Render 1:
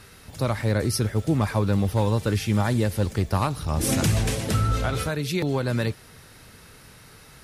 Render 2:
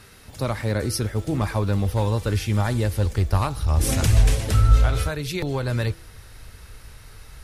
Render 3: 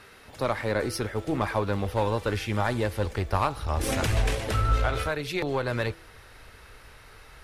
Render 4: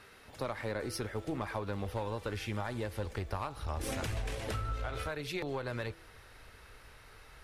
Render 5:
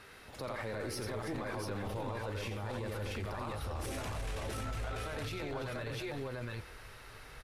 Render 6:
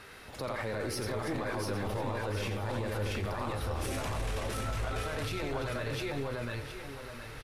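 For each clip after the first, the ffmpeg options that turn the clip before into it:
-af "bandreject=f=165.5:t=h:w=4,bandreject=f=331:t=h:w=4,bandreject=f=496.5:t=h:w=4,bandreject=f=662:t=h:w=4,bandreject=f=827.5:t=h:w=4,bandreject=f=993:t=h:w=4,bandreject=f=1.1585k:t=h:w=4,bandreject=f=1.324k:t=h:w=4,bandreject=f=1.4895k:t=h:w=4,asubboost=boost=9:cutoff=62"
-af "bass=f=250:g=-11,treble=f=4k:g=-10,aeval=exprs='0.251*(cos(1*acos(clip(val(0)/0.251,-1,1)))-cos(1*PI/2))+0.00708*(cos(8*acos(clip(val(0)/0.251,-1,1)))-cos(8*PI/2))':c=same,volume=1.5dB"
-af "acompressor=threshold=-27dB:ratio=6,volume=-5.5dB"
-filter_complex "[0:a]asplit=2[a][b];[b]aecho=0:1:87|326|686|694:0.501|0.251|0.501|0.501[c];[a][c]amix=inputs=2:normalize=0,alimiter=level_in=8.5dB:limit=-24dB:level=0:latency=1:release=12,volume=-8.5dB,volume=1.5dB"
-af "aecho=1:1:715|1430|2145|2860|3575:0.316|0.142|0.064|0.0288|0.013,volume=4dB"

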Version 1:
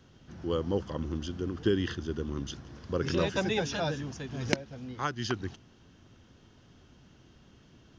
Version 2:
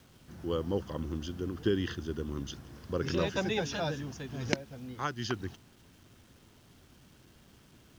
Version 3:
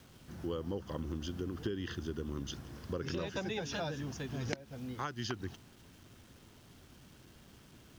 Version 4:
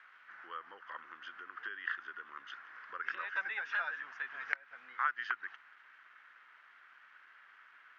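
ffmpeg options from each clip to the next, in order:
-af "acrusher=bits=9:mix=0:aa=0.000001,volume=-2dB"
-af "acompressor=threshold=-35dB:ratio=6,volume=1dB"
-af "asuperpass=centerf=1600:order=4:qfactor=1.9,volume=11.5dB"

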